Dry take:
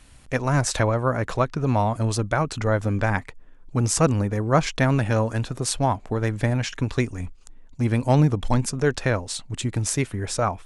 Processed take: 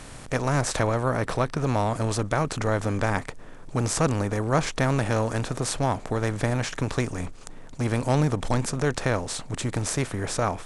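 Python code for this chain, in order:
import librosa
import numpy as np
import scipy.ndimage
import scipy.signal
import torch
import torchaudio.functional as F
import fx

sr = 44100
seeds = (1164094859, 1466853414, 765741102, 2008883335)

y = fx.bin_compress(x, sr, power=0.6)
y = fx.notch(y, sr, hz=6800.0, q=6.6, at=(1.09, 1.57))
y = y * 10.0 ** (-6.0 / 20.0)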